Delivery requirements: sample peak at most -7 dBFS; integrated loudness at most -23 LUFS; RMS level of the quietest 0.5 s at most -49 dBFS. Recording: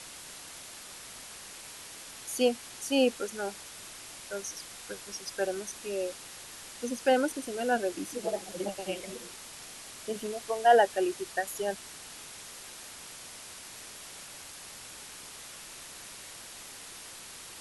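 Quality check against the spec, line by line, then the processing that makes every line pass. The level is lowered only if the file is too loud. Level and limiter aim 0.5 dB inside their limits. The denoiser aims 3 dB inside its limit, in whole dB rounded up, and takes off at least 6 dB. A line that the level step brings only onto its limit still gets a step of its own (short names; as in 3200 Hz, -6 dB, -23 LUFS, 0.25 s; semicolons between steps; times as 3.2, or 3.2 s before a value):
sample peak -9.5 dBFS: OK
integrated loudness -34.0 LUFS: OK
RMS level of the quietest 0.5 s -46 dBFS: fail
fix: denoiser 6 dB, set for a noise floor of -46 dBFS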